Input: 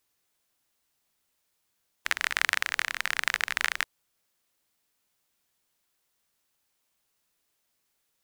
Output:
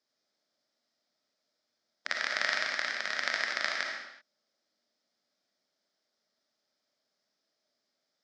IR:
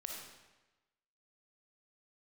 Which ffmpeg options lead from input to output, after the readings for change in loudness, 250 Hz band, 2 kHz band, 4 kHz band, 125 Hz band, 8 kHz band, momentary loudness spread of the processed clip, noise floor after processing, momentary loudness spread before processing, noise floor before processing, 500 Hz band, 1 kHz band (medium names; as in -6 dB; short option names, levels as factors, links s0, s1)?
-3.0 dB, +1.0 dB, -3.5 dB, -2.0 dB, no reading, -7.5 dB, 11 LU, -83 dBFS, 7 LU, -77 dBFS, +5.5 dB, -2.5 dB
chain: -filter_complex "[0:a]highpass=f=130:w=0.5412,highpass=f=130:w=1.3066,equalizer=f=140:t=q:w=4:g=-5,equalizer=f=240:t=q:w=4:g=7,equalizer=f=600:t=q:w=4:g=9,equalizer=f=1000:t=q:w=4:g=-6,equalizer=f=2700:t=q:w=4:g=-10,equalizer=f=5100:t=q:w=4:g=8,lowpass=f=5600:w=0.5412,lowpass=f=5600:w=1.3066[s0];[1:a]atrim=start_sample=2205,afade=t=out:st=0.43:d=0.01,atrim=end_sample=19404[s1];[s0][s1]afir=irnorm=-1:irlink=0"